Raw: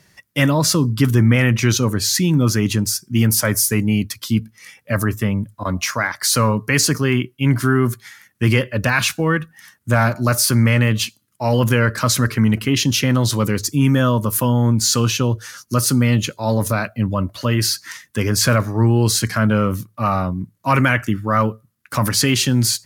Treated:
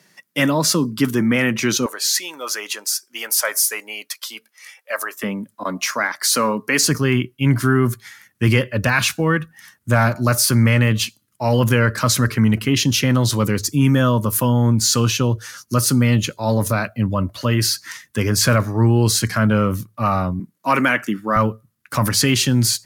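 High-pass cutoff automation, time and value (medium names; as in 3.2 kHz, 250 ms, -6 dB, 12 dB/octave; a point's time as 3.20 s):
high-pass 24 dB/octave
170 Hz
from 1.86 s 550 Hz
from 5.23 s 210 Hz
from 6.83 s 49 Hz
from 20.40 s 190 Hz
from 21.36 s 51 Hz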